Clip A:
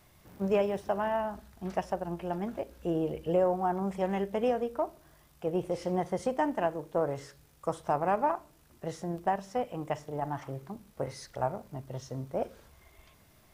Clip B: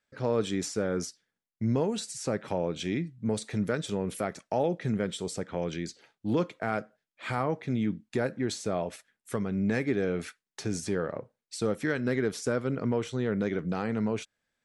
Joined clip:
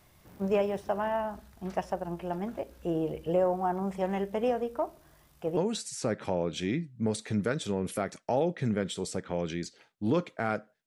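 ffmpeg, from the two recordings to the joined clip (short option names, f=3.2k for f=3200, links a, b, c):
-filter_complex "[0:a]apad=whole_dur=10.86,atrim=end=10.86,atrim=end=5.572[a];[1:a]atrim=start=1.798:end=7.09[b];[a][b]acrossfade=d=0.004:c1=hsin:c2=hsin"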